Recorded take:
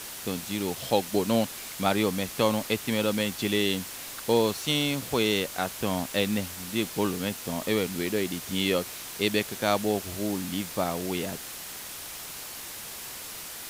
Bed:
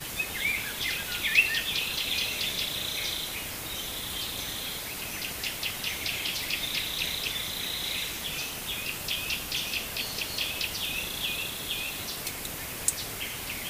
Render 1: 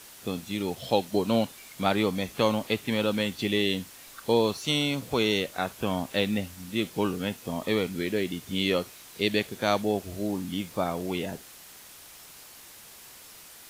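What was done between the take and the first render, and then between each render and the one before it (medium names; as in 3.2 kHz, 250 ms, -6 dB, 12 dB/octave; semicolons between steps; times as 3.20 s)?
noise print and reduce 9 dB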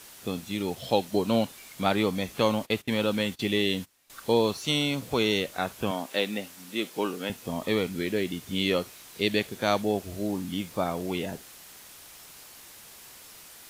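2.40–4.10 s: gate -41 dBFS, range -19 dB; 5.91–7.30 s: high-pass 280 Hz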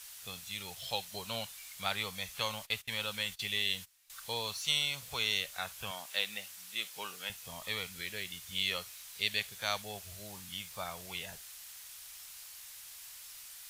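amplifier tone stack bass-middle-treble 10-0-10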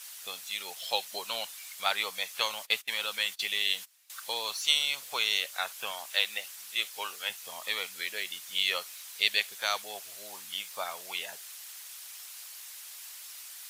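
harmonic-percussive split percussive +7 dB; high-pass 390 Hz 12 dB/octave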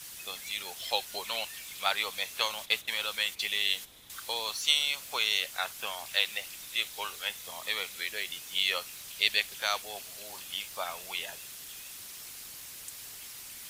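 add bed -20 dB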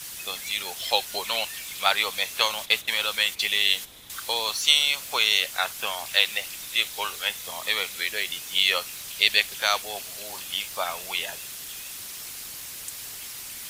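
trim +7 dB; peak limiter -2 dBFS, peak gain reduction 1.5 dB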